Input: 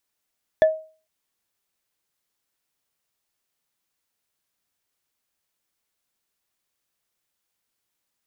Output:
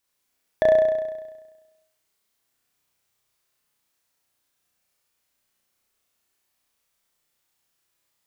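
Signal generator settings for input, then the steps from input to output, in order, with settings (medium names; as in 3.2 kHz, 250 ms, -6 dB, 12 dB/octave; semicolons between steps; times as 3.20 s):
wood hit bar, lowest mode 632 Hz, decay 0.38 s, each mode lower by 11.5 dB, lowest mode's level -9 dB
compression, threshold -19 dBFS; on a send: flutter echo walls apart 5.7 m, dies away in 1.2 s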